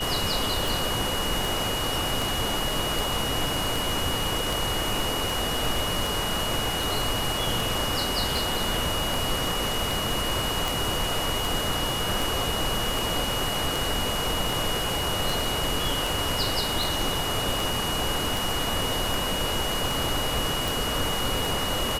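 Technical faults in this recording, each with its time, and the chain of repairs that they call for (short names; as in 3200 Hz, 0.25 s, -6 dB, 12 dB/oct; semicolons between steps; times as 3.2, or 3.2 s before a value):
tick 78 rpm
tone 2900 Hz -30 dBFS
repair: de-click; notch 2900 Hz, Q 30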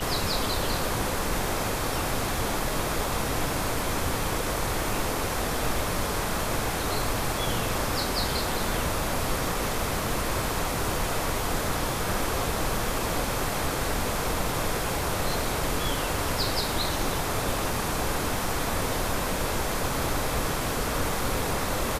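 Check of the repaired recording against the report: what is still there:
none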